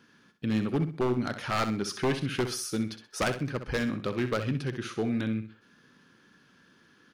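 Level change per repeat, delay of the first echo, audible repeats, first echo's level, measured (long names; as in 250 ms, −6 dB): −10.5 dB, 64 ms, 3, −10.0 dB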